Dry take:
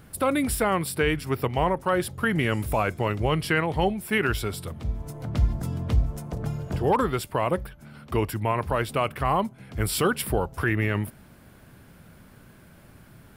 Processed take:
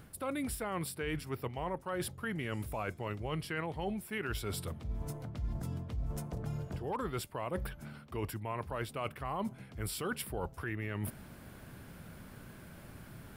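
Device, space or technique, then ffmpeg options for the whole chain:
compression on the reversed sound: -af "areverse,acompressor=threshold=-35dB:ratio=6,areverse"

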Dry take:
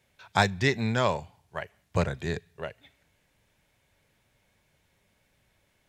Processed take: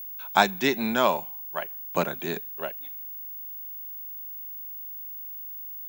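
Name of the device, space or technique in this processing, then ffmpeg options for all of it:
old television with a line whistle: -af "highpass=frequency=220:width=0.5412,highpass=frequency=220:width=1.3066,equalizer=frequency=470:width_type=q:width=4:gain=-8,equalizer=frequency=1900:width_type=q:width=4:gain=-8,equalizer=frequency=4800:width_type=q:width=4:gain=-9,lowpass=frequency=7300:width=0.5412,lowpass=frequency=7300:width=1.3066,aeval=exprs='val(0)+0.00891*sin(2*PI*15625*n/s)':channel_layout=same,volume=5.5dB"

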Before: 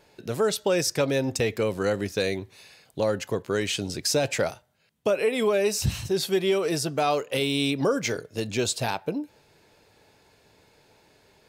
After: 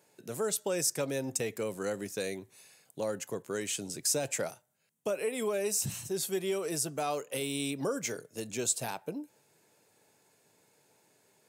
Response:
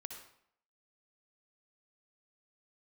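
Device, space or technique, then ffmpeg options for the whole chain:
budget condenser microphone: -af "highpass=frequency=120:width=0.5412,highpass=frequency=120:width=1.3066,highshelf=frequency=5900:width_type=q:width=1.5:gain=9,volume=-9dB"

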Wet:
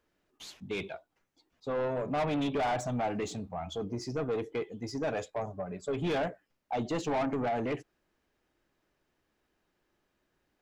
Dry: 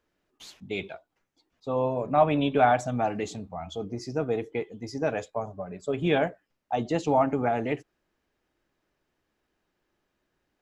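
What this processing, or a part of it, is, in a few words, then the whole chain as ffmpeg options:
saturation between pre-emphasis and de-emphasis: -af "highshelf=frequency=3400:gain=9,asoftclip=type=tanh:threshold=-26.5dB,highshelf=frequency=3400:gain=-9"

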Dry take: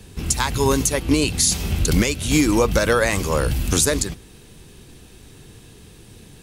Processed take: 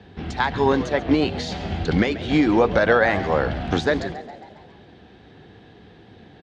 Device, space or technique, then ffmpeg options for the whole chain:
frequency-shifting delay pedal into a guitar cabinet: -filter_complex "[0:a]asplit=7[link_01][link_02][link_03][link_04][link_05][link_06][link_07];[link_02]adelay=137,afreqshift=89,volume=-15.5dB[link_08];[link_03]adelay=274,afreqshift=178,volume=-20.4dB[link_09];[link_04]adelay=411,afreqshift=267,volume=-25.3dB[link_10];[link_05]adelay=548,afreqshift=356,volume=-30.1dB[link_11];[link_06]adelay=685,afreqshift=445,volume=-35dB[link_12];[link_07]adelay=822,afreqshift=534,volume=-39.9dB[link_13];[link_01][link_08][link_09][link_10][link_11][link_12][link_13]amix=inputs=7:normalize=0,highpass=96,equalizer=frequency=130:width_type=q:width=4:gain=-6,equalizer=frequency=750:width_type=q:width=4:gain=9,equalizer=frequency=1100:width_type=q:width=4:gain=-3,equalizer=frequency=1700:width_type=q:width=4:gain=4,equalizer=frequency=2600:width_type=q:width=4:gain=-7,lowpass=frequency=3500:width=0.5412,lowpass=frequency=3500:width=1.3066"

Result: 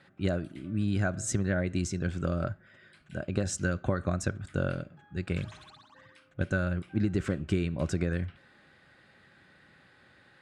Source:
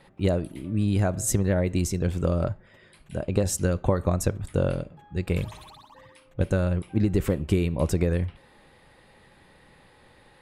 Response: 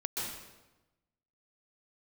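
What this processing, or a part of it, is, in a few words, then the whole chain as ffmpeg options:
car door speaker: -af "highpass=88,equalizer=frequency=470:width_type=q:width=4:gain=-7,equalizer=frequency=920:width_type=q:width=4:gain=-9,equalizer=frequency=1500:width_type=q:width=4:gain=10,lowpass=frequency=8000:width=0.5412,lowpass=frequency=8000:width=1.3066,volume=-4dB"

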